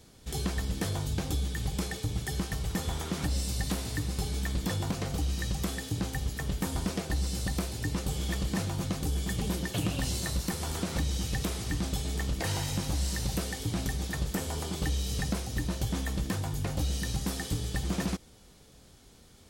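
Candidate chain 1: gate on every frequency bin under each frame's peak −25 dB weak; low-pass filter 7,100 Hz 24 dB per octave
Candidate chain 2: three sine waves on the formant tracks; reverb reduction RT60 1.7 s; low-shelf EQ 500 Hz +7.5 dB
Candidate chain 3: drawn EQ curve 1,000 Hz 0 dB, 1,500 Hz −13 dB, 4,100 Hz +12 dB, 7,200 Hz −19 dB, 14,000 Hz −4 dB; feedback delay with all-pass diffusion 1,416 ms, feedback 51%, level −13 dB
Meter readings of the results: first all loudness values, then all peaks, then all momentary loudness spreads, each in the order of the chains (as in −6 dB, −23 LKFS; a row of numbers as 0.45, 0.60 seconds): −43.0, −28.5, −31.5 LKFS; −24.0, −9.0, −17.0 dBFS; 4, 7, 3 LU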